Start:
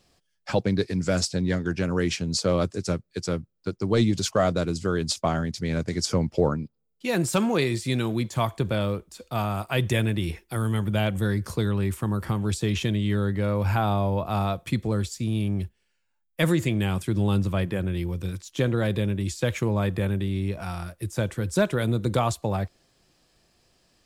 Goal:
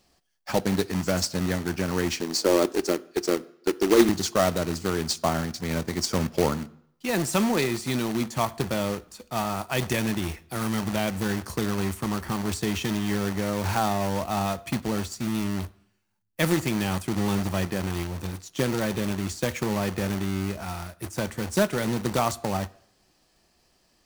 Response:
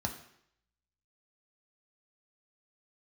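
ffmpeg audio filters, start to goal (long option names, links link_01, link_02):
-filter_complex "[0:a]asettb=1/sr,asplit=3[link_01][link_02][link_03];[link_01]atrim=end=2.214[link_04];[link_02]atrim=start=2.21:end=4.09,asetpts=PTS-STARTPTS,afade=type=in:duration=0.004:curve=qsin,afade=type=out:start_time=1.876:duration=0.004:curve=qsin,highpass=frequency=340:width_type=q:width=3.4[link_05];[link_03]atrim=start=4.086[link_06];[link_04][link_05]acrossfade=duration=0.004:curve1=hsin:curve2=qsin[link_07];[link_07][link_06]acrossfade=duration=0.004:curve1=qsin:curve2=hsin,acrusher=bits=2:mode=log:mix=0:aa=0.000001,asplit=2[link_08][link_09];[1:a]atrim=start_sample=2205,lowshelf=frequency=320:gain=-8[link_10];[link_09][link_10]afir=irnorm=-1:irlink=0,volume=-12.5dB[link_11];[link_08][link_11]amix=inputs=2:normalize=0,volume=-2dB"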